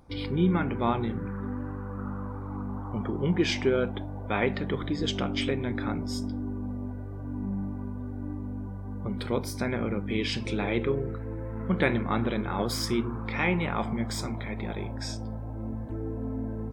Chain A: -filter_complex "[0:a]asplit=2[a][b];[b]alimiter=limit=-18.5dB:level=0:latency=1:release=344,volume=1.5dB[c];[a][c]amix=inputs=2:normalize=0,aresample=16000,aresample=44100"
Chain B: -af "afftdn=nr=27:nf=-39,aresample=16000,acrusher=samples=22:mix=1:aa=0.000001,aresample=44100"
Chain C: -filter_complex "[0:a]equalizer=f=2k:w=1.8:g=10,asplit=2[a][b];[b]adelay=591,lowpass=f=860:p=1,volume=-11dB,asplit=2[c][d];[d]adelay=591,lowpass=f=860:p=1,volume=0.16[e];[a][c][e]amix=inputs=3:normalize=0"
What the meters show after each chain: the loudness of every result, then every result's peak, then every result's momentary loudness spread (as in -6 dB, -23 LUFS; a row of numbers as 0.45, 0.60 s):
-25.0, -31.0, -28.5 LUFS; -6.5, -10.5, -5.5 dBFS; 9, 10, 12 LU